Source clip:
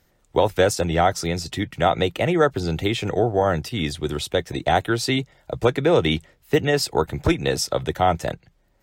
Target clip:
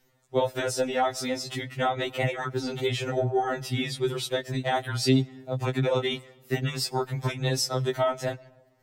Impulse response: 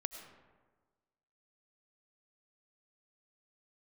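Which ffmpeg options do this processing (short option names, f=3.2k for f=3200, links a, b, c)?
-filter_complex "[0:a]acompressor=threshold=-18dB:ratio=6,asplit=2[a][b];[1:a]atrim=start_sample=2205[c];[b][c]afir=irnorm=-1:irlink=0,volume=-14dB[d];[a][d]amix=inputs=2:normalize=0,afftfilt=real='re*2.45*eq(mod(b,6),0)':imag='im*2.45*eq(mod(b,6),0)':win_size=2048:overlap=0.75,volume=-1.5dB"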